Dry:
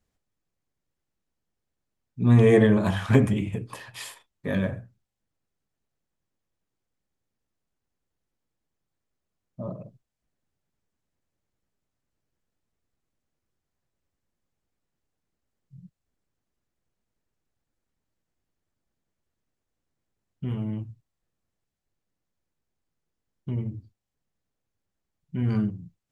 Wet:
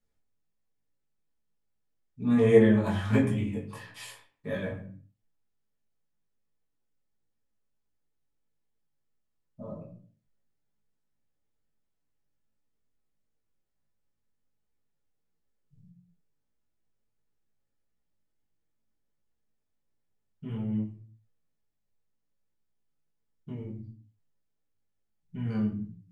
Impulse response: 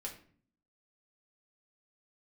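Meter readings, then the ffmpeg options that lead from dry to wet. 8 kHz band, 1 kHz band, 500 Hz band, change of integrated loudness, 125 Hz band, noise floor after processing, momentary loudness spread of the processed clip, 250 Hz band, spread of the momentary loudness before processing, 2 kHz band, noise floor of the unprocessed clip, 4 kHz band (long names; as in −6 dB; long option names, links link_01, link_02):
−6.0 dB, −5.0 dB, −1.5 dB, −3.5 dB, −7.5 dB, −78 dBFS, 24 LU, −2.5 dB, 22 LU, −4.5 dB, −84 dBFS, −5.0 dB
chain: -filter_complex "[1:a]atrim=start_sample=2205,afade=type=out:start_time=0.38:duration=0.01,atrim=end_sample=17199[link_01];[0:a][link_01]afir=irnorm=-1:irlink=0,flanger=delay=17:depth=3.4:speed=1.5"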